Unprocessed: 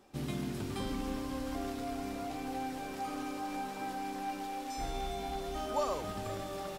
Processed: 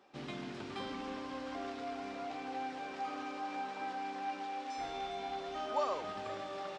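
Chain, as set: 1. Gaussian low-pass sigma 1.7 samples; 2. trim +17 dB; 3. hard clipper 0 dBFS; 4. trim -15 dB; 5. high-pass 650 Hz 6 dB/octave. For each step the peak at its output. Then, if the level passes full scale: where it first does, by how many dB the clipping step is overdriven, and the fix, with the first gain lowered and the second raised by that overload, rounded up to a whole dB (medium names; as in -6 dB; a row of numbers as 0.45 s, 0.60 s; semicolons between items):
-22.0 dBFS, -5.0 dBFS, -5.0 dBFS, -20.0 dBFS, -22.5 dBFS; nothing clips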